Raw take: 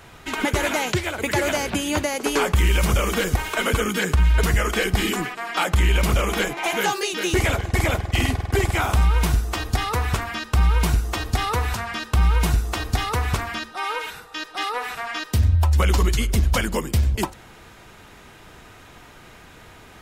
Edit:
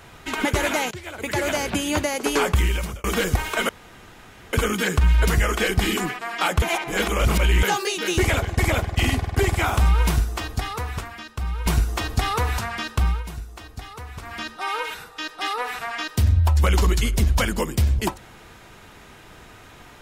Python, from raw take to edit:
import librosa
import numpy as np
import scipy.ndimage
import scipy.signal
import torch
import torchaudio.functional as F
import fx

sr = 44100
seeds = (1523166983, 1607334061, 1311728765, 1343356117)

y = fx.edit(x, sr, fx.fade_in_from(start_s=0.91, length_s=0.92, curve='qsin', floor_db=-17.5),
    fx.fade_out_span(start_s=2.52, length_s=0.52),
    fx.insert_room_tone(at_s=3.69, length_s=0.84),
    fx.reverse_span(start_s=5.78, length_s=1.01),
    fx.fade_out_to(start_s=9.25, length_s=1.57, curve='qua', floor_db=-10.0),
    fx.fade_down_up(start_s=11.99, length_s=1.78, db=-14.0, fade_s=0.4, curve='qsin'), tone=tone)